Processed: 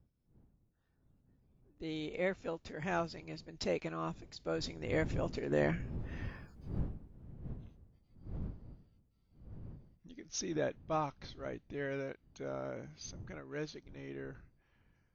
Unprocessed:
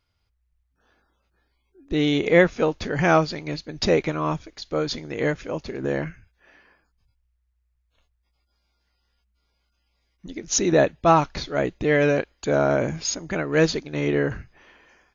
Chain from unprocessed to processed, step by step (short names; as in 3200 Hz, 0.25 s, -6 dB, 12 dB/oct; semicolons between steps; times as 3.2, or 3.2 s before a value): wind noise 140 Hz -38 dBFS; Doppler pass-by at 6.51, 19 m/s, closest 4.6 m; gain +6.5 dB